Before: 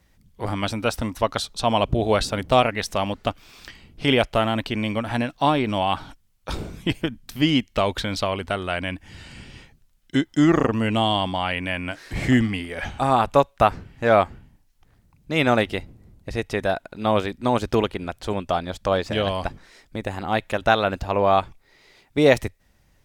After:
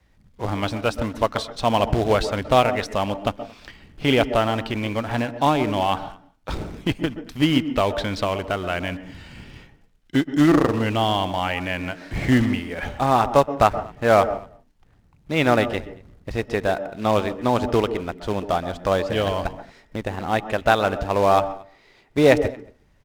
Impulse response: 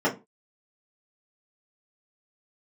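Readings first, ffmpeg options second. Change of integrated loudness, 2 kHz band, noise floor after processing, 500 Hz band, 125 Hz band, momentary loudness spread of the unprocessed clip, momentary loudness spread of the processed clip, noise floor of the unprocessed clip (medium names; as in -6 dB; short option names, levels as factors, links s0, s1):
+1.0 dB, 0.0 dB, -58 dBFS, +1.5 dB, +1.0 dB, 12 LU, 13 LU, -61 dBFS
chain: -filter_complex "[0:a]adynamicequalizer=threshold=0.0158:dfrequency=210:dqfactor=2.5:tfrequency=210:tqfactor=2.5:attack=5:release=100:ratio=0.375:range=2.5:mode=cutabove:tftype=bell,acrusher=bits=3:mode=log:mix=0:aa=0.000001,aemphasis=mode=reproduction:type=50kf,asplit=2[s0][s1];[s1]adelay=227.4,volume=0.0562,highshelf=f=4000:g=-5.12[s2];[s0][s2]amix=inputs=2:normalize=0,asplit=2[s3][s4];[1:a]atrim=start_sample=2205,lowpass=5800,adelay=122[s5];[s4][s5]afir=irnorm=-1:irlink=0,volume=0.0398[s6];[s3][s6]amix=inputs=2:normalize=0,volume=1.12"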